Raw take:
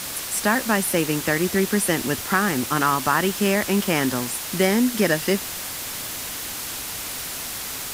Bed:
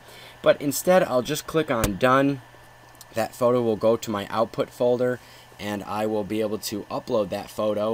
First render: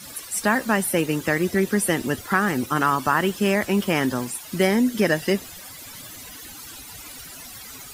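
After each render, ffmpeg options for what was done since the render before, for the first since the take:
-af "afftdn=nr=15:nf=-32"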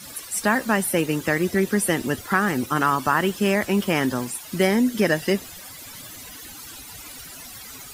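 -af anull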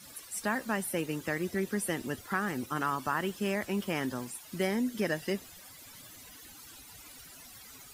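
-af "volume=-11dB"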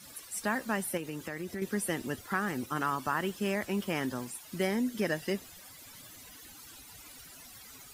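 -filter_complex "[0:a]asettb=1/sr,asplit=3[a][b][c];[a]atrim=end=0.974[d];[b]atrim=start=0.97:end=1.62,asetpts=PTS-STARTPTS,afade=t=in:d=0.004:c=qsin,afade=t=out:st=0.646:d=0.004:c=qsin,acompressor=threshold=-35dB:ratio=3:attack=3.2:release=140:knee=1:detection=peak[e];[c]atrim=start=1.616[f];[d][e]acrossfade=d=0.004:c1=hsin:c2=qsin[g];[g][f]acrossfade=d=0.004:c1=qsin:c2=hsin"

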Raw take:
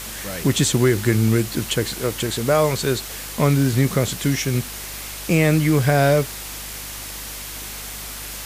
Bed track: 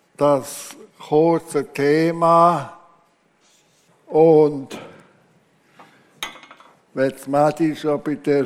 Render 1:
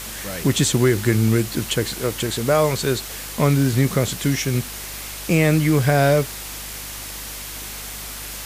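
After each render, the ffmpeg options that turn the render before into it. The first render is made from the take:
-af anull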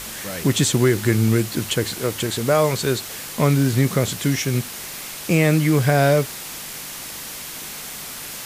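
-af "bandreject=f=50:t=h:w=4,bandreject=f=100:t=h:w=4"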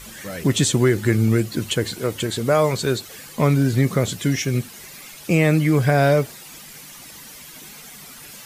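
-af "afftdn=nr=11:nf=-34"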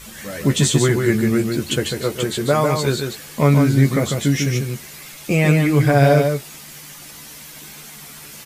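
-filter_complex "[0:a]asplit=2[a][b];[b]adelay=14,volume=-6dB[c];[a][c]amix=inputs=2:normalize=0,aecho=1:1:147:0.562"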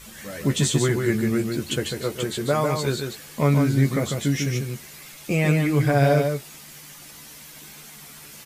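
-af "volume=-5dB"

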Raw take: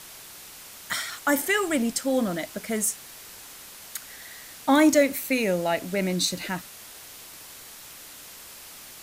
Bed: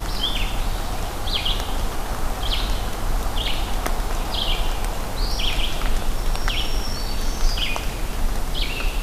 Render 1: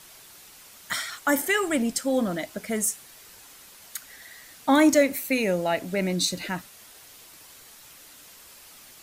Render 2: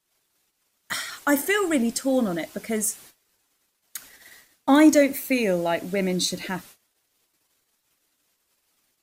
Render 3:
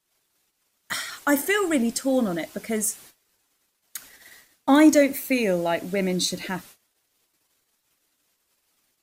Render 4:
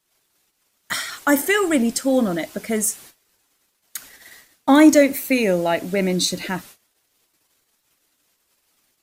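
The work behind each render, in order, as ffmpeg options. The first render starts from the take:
-af "afftdn=nr=6:nf=-45"
-af "agate=range=-28dB:threshold=-45dB:ratio=16:detection=peak,equalizer=f=330:t=o:w=1:g=4"
-af anull
-af "volume=4dB,alimiter=limit=-3dB:level=0:latency=1"

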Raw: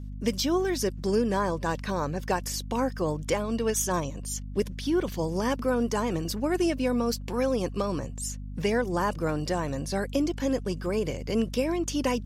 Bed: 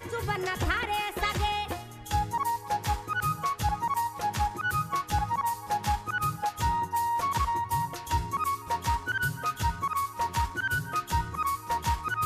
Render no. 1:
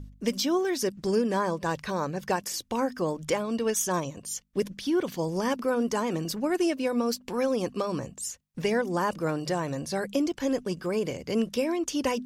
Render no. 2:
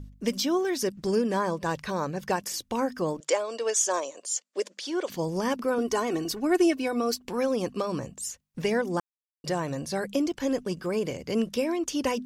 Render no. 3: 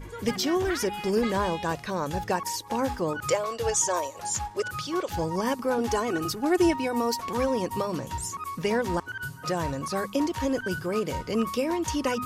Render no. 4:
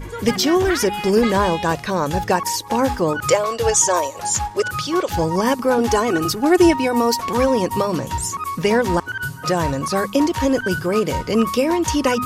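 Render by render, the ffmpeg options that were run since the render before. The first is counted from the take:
-af "bandreject=f=50:t=h:w=4,bandreject=f=100:t=h:w=4,bandreject=f=150:t=h:w=4,bandreject=f=200:t=h:w=4,bandreject=f=250:t=h:w=4"
-filter_complex "[0:a]asettb=1/sr,asplit=3[a][b][c];[a]atrim=end=3.204[d];[b]atrim=start=3.2:end=5.1,asetpts=PTS-STARTPTS,afade=t=in:d=0.004:c=qsin,afade=t=out:st=1.896:d=0.004:c=qsin,highpass=f=380:w=0.5412,highpass=f=380:w=1.3066,equalizer=f=590:t=q:w=4:g=5,equalizer=f=4.6k:t=q:w=4:g=4,equalizer=f=7.2k:t=q:w=4:g=8,lowpass=f=9.4k:w=0.5412,lowpass=f=9.4k:w=1.3066[e];[c]atrim=start=5.096[f];[d][e]acrossfade=d=0.004:c1=hsin:c2=qsin[g];[g][f]acrossfade=d=0.004:c1=qsin:c2=hsin,asettb=1/sr,asplit=3[h][i][j];[h]atrim=end=5.784[k];[i]atrim=start=5.78:end=7.25,asetpts=PTS-STARTPTS,afade=t=in:d=0.004:c=qsin,afade=t=out:st=1.466:d=0.004:c=qsin,aecho=1:1:2.7:0.65,atrim=end_sample=64827[l];[j]atrim=start=7.246[m];[k][l]acrossfade=d=0.004:c1=hsin:c2=qsin[n];[n][m]acrossfade=d=0.004:c1=qsin:c2=hsin,asplit=3[o][p][q];[o]atrim=end=9,asetpts=PTS-STARTPTS,afade=t=out:st=8.996:d=0.004:c=hsin[r];[p]atrim=start=9:end=9.44,asetpts=PTS-STARTPTS,volume=0[s];[q]atrim=start=9.44,asetpts=PTS-STARTPTS,afade=t=in:d=0.004:c=hsin[t];[r][s][t]concat=n=3:v=0:a=1"
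-filter_complex "[1:a]volume=-6.5dB[a];[0:a][a]amix=inputs=2:normalize=0"
-af "volume=9dB"

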